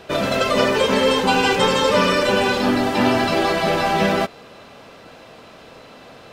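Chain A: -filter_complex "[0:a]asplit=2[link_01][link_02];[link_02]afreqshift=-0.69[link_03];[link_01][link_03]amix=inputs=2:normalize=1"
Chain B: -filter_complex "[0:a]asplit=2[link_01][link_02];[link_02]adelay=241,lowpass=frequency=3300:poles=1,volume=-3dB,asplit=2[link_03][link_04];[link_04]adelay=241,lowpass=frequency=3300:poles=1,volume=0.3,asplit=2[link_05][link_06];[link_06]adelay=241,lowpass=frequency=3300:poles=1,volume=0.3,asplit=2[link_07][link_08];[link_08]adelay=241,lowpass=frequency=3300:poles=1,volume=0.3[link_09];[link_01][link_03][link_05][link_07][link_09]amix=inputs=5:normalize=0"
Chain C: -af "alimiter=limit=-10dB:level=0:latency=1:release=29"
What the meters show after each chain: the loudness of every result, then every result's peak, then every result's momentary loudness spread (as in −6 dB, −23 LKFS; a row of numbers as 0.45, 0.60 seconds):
−21.0, −16.5, −19.0 LKFS; −7.5, −3.0, −10.0 dBFS; 4, 7, 2 LU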